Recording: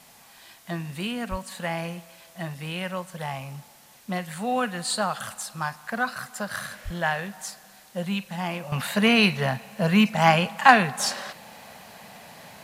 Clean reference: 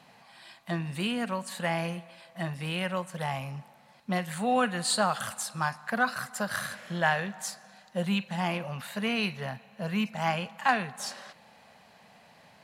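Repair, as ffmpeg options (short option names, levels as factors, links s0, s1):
-filter_complex "[0:a]asplit=3[s0][s1][s2];[s0]afade=t=out:st=1.3:d=0.02[s3];[s1]highpass=f=140:w=0.5412,highpass=f=140:w=1.3066,afade=t=in:st=1.3:d=0.02,afade=t=out:st=1.42:d=0.02[s4];[s2]afade=t=in:st=1.42:d=0.02[s5];[s3][s4][s5]amix=inputs=3:normalize=0,asplit=3[s6][s7][s8];[s6]afade=t=out:st=6.84:d=0.02[s9];[s7]highpass=f=140:w=0.5412,highpass=f=140:w=1.3066,afade=t=in:st=6.84:d=0.02,afade=t=out:st=6.96:d=0.02[s10];[s8]afade=t=in:st=6.96:d=0.02[s11];[s9][s10][s11]amix=inputs=3:normalize=0,agate=range=0.0891:threshold=0.00708,asetnsamples=n=441:p=0,asendcmd='8.72 volume volume -10.5dB',volume=1"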